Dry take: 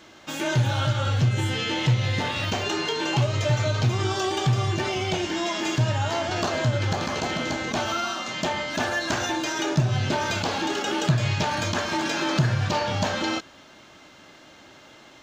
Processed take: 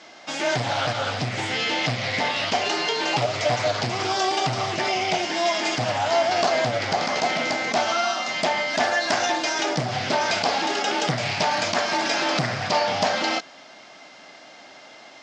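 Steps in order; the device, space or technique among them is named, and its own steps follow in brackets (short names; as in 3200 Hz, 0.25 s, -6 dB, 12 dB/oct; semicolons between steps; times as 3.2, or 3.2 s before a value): full-range speaker at full volume (Doppler distortion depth 0.55 ms; speaker cabinet 220–8300 Hz, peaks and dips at 340 Hz -5 dB, 710 Hz +9 dB, 2100 Hz +5 dB, 5000 Hz +8 dB); gain +1.5 dB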